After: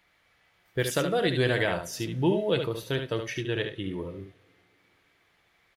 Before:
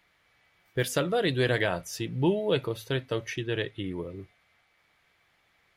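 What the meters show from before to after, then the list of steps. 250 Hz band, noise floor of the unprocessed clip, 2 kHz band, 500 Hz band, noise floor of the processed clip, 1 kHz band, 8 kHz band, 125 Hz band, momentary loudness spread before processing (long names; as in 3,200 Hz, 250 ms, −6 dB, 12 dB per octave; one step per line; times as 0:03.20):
+1.0 dB, −69 dBFS, +1.0 dB, +0.5 dB, −67 dBFS, +1.0 dB, +1.0 dB, +0.5 dB, 10 LU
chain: on a send: single-tap delay 72 ms −7 dB
on the sum: coupled-rooms reverb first 0.5 s, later 3.5 s, from −16 dB, DRR 18.5 dB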